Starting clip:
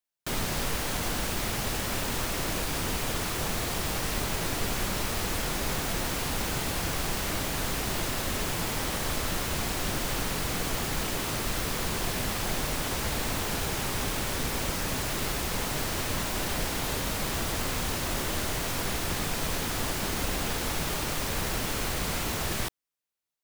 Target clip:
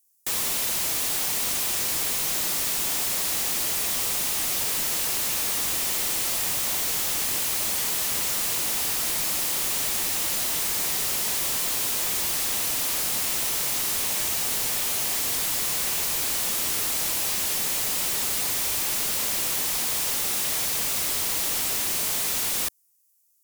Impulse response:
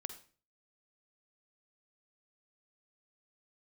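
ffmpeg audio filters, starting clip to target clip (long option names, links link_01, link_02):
-filter_complex "[0:a]highpass=120,aemphasis=mode=production:type=cd,aexciter=amount=5.8:drive=6.3:freq=5400,asplit=2[link_01][link_02];[link_02]highpass=frequency=720:poles=1,volume=16dB,asoftclip=type=tanh:threshold=-5dB[link_03];[link_01][link_03]amix=inputs=2:normalize=0,lowpass=frequency=6400:poles=1,volume=-6dB,aeval=exprs='(mod(5.01*val(0)+1,2)-1)/5.01':channel_layout=same,equalizer=frequency=1500:width_type=o:width=0.47:gain=-3.5,volume=-8.5dB"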